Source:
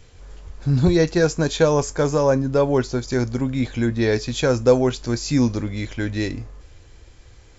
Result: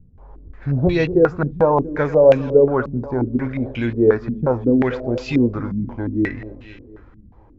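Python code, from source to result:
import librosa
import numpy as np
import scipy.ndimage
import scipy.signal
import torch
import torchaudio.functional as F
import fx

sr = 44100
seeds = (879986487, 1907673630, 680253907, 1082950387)

y = fx.echo_feedback(x, sr, ms=239, feedback_pct=55, wet_db=-13)
y = fx.filter_held_lowpass(y, sr, hz=5.6, low_hz=200.0, high_hz=2800.0)
y = y * 10.0 ** (-2.0 / 20.0)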